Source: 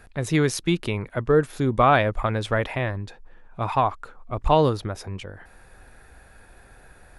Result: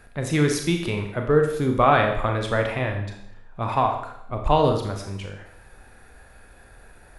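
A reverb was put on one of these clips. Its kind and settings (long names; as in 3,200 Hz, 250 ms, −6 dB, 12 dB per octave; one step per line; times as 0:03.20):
four-comb reverb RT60 0.71 s, combs from 27 ms, DRR 3 dB
level −1 dB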